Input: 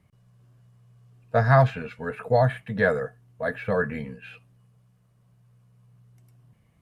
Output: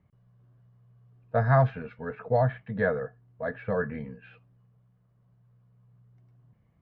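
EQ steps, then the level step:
high-frequency loss of the air 200 metres
parametric band 2,600 Hz −4 dB 0.5 octaves
high-shelf EQ 4,700 Hz −10 dB
−3.0 dB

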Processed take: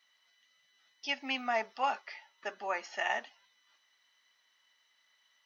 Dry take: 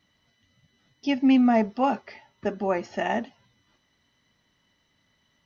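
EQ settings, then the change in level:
high-pass filter 1,100 Hz 12 dB per octave
0.0 dB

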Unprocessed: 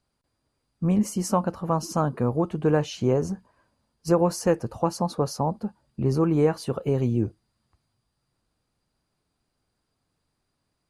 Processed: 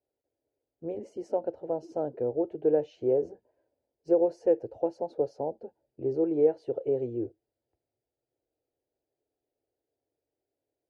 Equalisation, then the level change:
resonant band-pass 460 Hz, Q 1.1
high-frequency loss of the air 55 metres
phaser with its sweep stopped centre 470 Hz, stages 4
0.0 dB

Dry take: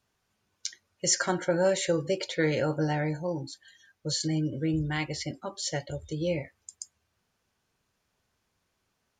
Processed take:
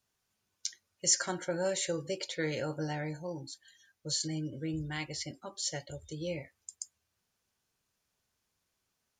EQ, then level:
high-shelf EQ 4,000 Hz +9.5 dB
−8.0 dB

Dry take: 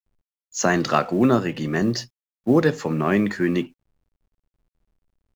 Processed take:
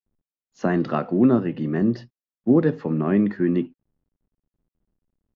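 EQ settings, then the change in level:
high-frequency loss of the air 300 metres
parametric band 240 Hz +9 dB 2.1 octaves
notch filter 2,300 Hz, Q 19
−6.5 dB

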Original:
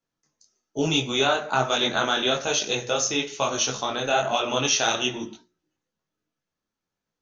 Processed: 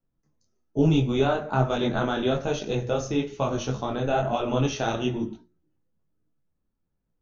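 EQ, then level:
spectral tilt −4.5 dB per octave
−4.0 dB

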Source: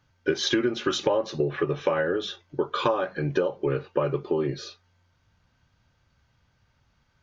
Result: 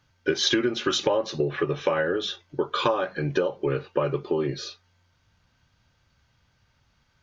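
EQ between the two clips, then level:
parametric band 4,600 Hz +4 dB 2.5 octaves
0.0 dB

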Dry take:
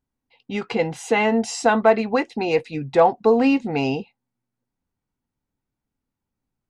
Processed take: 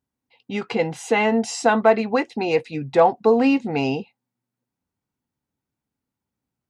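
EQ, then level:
high-pass filter 74 Hz
0.0 dB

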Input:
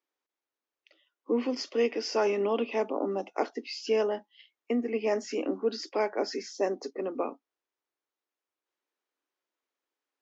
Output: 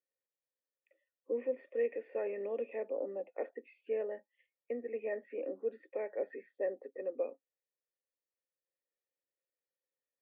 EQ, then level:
formant resonators in series e
+1.0 dB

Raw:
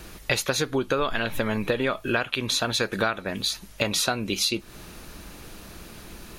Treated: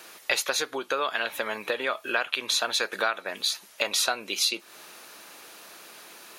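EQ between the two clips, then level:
high-pass filter 570 Hz 12 dB per octave
0.0 dB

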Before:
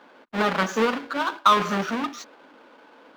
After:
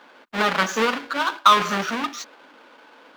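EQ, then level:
tilt shelving filter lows −4 dB
+2.0 dB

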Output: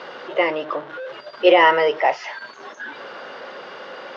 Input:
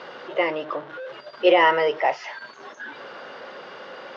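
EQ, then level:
high-pass filter 140 Hz 6 dB per octave
+3.5 dB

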